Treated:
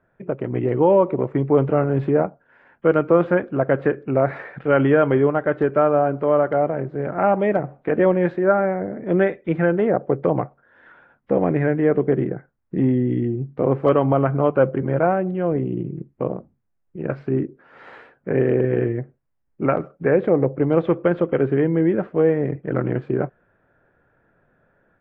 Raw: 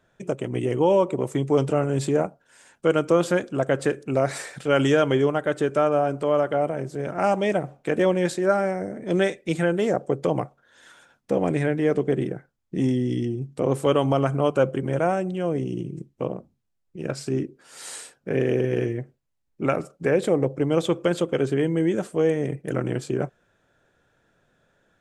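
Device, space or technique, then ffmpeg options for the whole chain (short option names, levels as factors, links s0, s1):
action camera in a waterproof case: -af "lowpass=f=2000:w=0.5412,lowpass=f=2000:w=1.3066,dynaudnorm=f=240:g=3:m=1.58" -ar 32000 -c:a aac -b:a 48k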